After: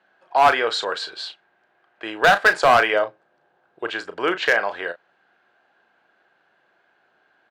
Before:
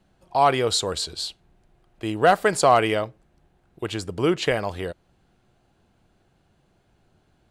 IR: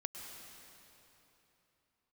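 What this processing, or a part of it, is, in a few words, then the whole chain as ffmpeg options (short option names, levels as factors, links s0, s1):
megaphone: -filter_complex "[0:a]asettb=1/sr,asplit=3[s0][s1][s2];[s0]atrim=end=2.934[s3];[s1]atrim=start=2.93:end=3.91,asetpts=PTS-STARTPTS,afade=t=in:d=0.004:c=qsin,afade=t=out:st=0.976:d=0.004:c=qsin,equalizer=f=125:t=o:w=1:g=6,equalizer=f=500:t=o:w=1:g=4,equalizer=f=2000:t=o:w=1:g=-6[s4];[s2]atrim=start=3.906[s5];[s3][s4]acrossfade=d=0.004:c1=hsin:c2=qsin[s6];[s6][s5]acrossfade=d=0.004:c1=qsin:c2=hsin,highpass=590,lowpass=3000,equalizer=f=1600:t=o:w=0.31:g=11,asoftclip=type=hard:threshold=0.2,asplit=2[s7][s8];[s8]adelay=35,volume=0.299[s9];[s7][s9]amix=inputs=2:normalize=0,volume=1.78"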